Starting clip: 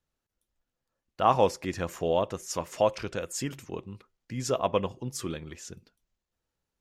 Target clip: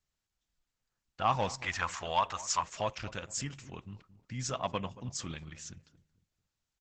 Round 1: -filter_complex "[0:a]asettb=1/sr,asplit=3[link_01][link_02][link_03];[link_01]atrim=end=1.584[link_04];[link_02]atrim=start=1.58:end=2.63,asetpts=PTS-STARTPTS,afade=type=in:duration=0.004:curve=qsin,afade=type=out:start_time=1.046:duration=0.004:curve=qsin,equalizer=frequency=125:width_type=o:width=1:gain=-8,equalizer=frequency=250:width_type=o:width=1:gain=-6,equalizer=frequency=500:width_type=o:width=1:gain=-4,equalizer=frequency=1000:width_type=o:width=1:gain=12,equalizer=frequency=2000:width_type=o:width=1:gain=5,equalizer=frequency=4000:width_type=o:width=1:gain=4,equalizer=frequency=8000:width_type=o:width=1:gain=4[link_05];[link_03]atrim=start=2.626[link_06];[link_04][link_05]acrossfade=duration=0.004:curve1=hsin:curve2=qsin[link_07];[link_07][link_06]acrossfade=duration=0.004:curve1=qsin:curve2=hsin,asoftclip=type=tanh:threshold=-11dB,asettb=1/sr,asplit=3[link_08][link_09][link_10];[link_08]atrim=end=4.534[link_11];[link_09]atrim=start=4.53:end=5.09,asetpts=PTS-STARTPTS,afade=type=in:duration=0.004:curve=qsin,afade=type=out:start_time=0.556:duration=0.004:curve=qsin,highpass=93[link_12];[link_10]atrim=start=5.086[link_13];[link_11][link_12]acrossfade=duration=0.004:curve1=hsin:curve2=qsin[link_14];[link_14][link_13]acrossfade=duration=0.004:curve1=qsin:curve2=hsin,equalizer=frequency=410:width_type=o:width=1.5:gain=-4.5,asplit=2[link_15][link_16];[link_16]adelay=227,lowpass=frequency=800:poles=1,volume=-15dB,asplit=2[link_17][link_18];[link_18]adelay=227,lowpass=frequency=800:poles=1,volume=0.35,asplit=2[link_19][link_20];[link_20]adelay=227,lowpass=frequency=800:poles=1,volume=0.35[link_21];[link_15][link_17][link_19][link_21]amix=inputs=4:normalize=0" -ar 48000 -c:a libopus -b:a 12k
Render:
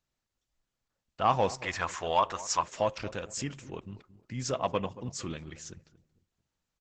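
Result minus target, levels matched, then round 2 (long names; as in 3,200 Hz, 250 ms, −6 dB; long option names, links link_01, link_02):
500 Hz band +3.5 dB
-filter_complex "[0:a]asettb=1/sr,asplit=3[link_01][link_02][link_03];[link_01]atrim=end=1.584[link_04];[link_02]atrim=start=1.58:end=2.63,asetpts=PTS-STARTPTS,afade=type=in:duration=0.004:curve=qsin,afade=type=out:start_time=1.046:duration=0.004:curve=qsin,equalizer=frequency=125:width_type=o:width=1:gain=-8,equalizer=frequency=250:width_type=o:width=1:gain=-6,equalizer=frequency=500:width_type=o:width=1:gain=-4,equalizer=frequency=1000:width_type=o:width=1:gain=12,equalizer=frequency=2000:width_type=o:width=1:gain=5,equalizer=frequency=4000:width_type=o:width=1:gain=4,equalizer=frequency=8000:width_type=o:width=1:gain=4[link_05];[link_03]atrim=start=2.626[link_06];[link_04][link_05]acrossfade=duration=0.004:curve1=hsin:curve2=qsin[link_07];[link_07][link_06]acrossfade=duration=0.004:curve1=qsin:curve2=hsin,asoftclip=type=tanh:threshold=-11dB,asettb=1/sr,asplit=3[link_08][link_09][link_10];[link_08]atrim=end=4.534[link_11];[link_09]atrim=start=4.53:end=5.09,asetpts=PTS-STARTPTS,afade=type=in:duration=0.004:curve=qsin,afade=type=out:start_time=0.556:duration=0.004:curve=qsin,highpass=93[link_12];[link_10]atrim=start=5.086[link_13];[link_11][link_12]acrossfade=duration=0.004:curve1=hsin:curve2=qsin[link_14];[link_14][link_13]acrossfade=duration=0.004:curve1=qsin:curve2=hsin,equalizer=frequency=410:width_type=o:width=1.5:gain=-13.5,asplit=2[link_15][link_16];[link_16]adelay=227,lowpass=frequency=800:poles=1,volume=-15dB,asplit=2[link_17][link_18];[link_18]adelay=227,lowpass=frequency=800:poles=1,volume=0.35,asplit=2[link_19][link_20];[link_20]adelay=227,lowpass=frequency=800:poles=1,volume=0.35[link_21];[link_15][link_17][link_19][link_21]amix=inputs=4:normalize=0" -ar 48000 -c:a libopus -b:a 12k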